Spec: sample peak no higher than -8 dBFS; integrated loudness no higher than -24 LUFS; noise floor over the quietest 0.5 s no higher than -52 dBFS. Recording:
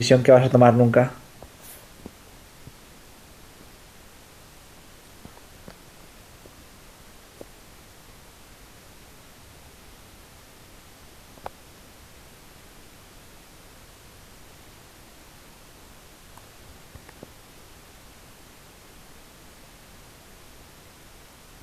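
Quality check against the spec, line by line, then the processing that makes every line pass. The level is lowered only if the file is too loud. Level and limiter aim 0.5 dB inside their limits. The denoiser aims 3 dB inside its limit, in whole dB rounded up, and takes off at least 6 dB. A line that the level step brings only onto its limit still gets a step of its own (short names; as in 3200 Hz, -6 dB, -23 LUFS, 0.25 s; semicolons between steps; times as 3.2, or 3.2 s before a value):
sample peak -3.5 dBFS: fail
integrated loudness -16.5 LUFS: fail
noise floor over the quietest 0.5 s -49 dBFS: fail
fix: gain -8 dB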